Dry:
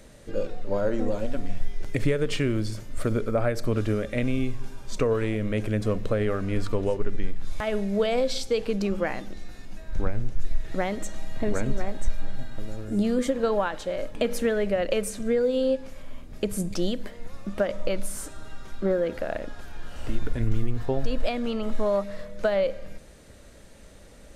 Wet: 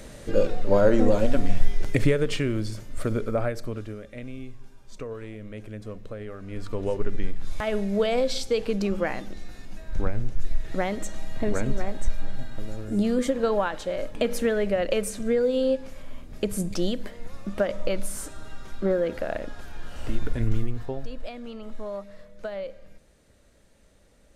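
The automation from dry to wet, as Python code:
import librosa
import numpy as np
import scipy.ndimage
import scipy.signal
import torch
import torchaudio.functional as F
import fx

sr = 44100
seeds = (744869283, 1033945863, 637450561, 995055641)

y = fx.gain(x, sr, db=fx.line((1.71, 7.0), (2.44, -1.0), (3.4, -1.0), (3.95, -12.0), (6.36, -12.0), (6.99, 0.5), (20.56, 0.5), (21.15, -10.0)))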